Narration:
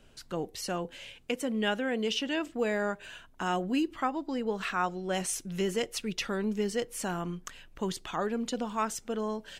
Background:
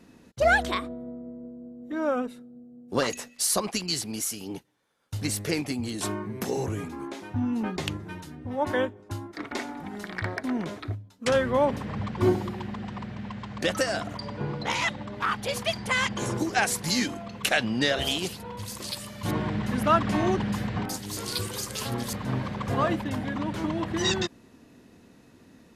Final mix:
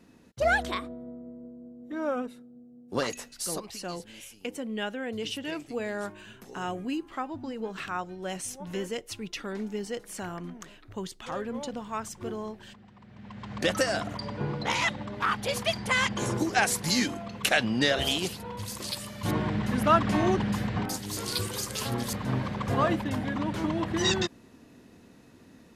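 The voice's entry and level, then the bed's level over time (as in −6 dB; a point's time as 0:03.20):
3.15 s, −3.5 dB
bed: 0:03.28 −3.5 dB
0:03.83 −18 dB
0:12.98 −18 dB
0:13.53 0 dB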